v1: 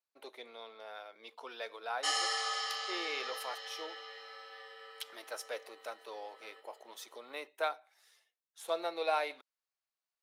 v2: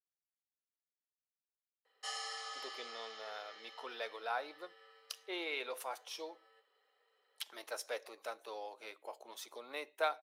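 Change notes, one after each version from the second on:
speech: entry +2.40 s; background -10.0 dB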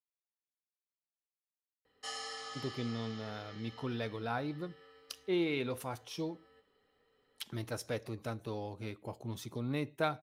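master: remove high-pass 520 Hz 24 dB/octave

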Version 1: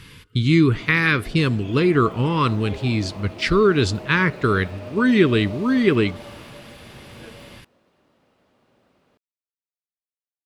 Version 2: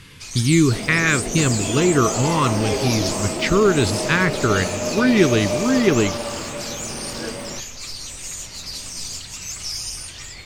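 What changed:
first sound: unmuted; second sound +12.0 dB

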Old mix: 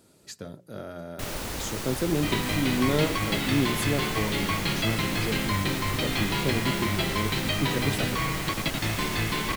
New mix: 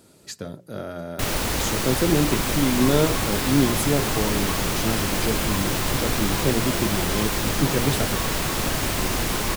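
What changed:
speech +5.5 dB; first sound +9.0 dB; second sound: add graphic EQ 125/2000/4000 Hz -7/-12/-12 dB

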